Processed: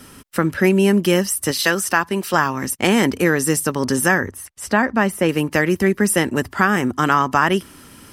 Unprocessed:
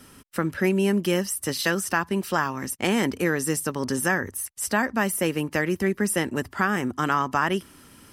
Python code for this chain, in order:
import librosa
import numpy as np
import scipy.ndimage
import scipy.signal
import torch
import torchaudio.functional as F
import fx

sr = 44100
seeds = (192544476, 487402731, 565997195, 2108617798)

y = fx.low_shelf(x, sr, hz=220.0, db=-8.5, at=(1.51, 2.34))
y = fx.lowpass(y, sr, hz=2700.0, slope=6, at=(4.26, 5.29))
y = y * 10.0 ** (7.0 / 20.0)